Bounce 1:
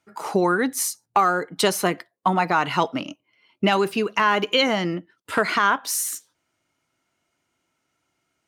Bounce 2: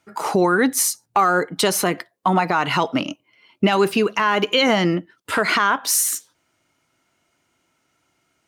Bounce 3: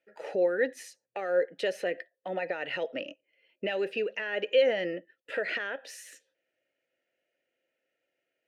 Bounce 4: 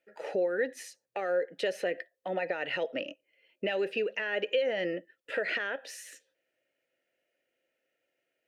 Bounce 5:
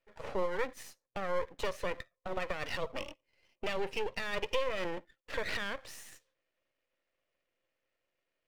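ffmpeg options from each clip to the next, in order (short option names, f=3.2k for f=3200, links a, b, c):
-af "alimiter=limit=-14dB:level=0:latency=1:release=104,volume=6.5dB"
-filter_complex "[0:a]asplit=3[a][b][c];[a]bandpass=f=530:t=q:w=8,volume=0dB[d];[b]bandpass=f=1.84k:t=q:w=8,volume=-6dB[e];[c]bandpass=f=2.48k:t=q:w=8,volume=-9dB[f];[d][e][f]amix=inputs=3:normalize=0"
-af "acompressor=threshold=-26dB:ratio=6,volume=1dB"
-af "aeval=exprs='max(val(0),0)':c=same"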